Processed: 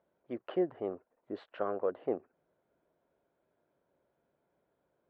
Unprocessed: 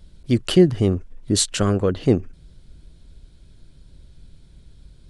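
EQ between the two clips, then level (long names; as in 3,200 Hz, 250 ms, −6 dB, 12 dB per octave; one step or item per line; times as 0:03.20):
four-pole ladder band-pass 810 Hz, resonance 30%
high-frequency loss of the air 450 metres
+4.0 dB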